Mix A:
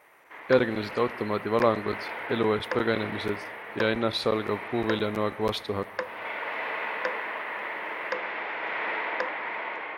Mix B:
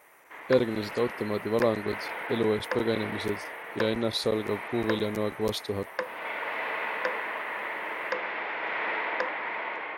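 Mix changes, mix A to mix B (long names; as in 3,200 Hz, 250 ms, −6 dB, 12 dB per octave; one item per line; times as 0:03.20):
speech: add drawn EQ curve 470 Hz 0 dB, 1,600 Hz −11 dB, 6,800 Hz +7 dB
reverb: off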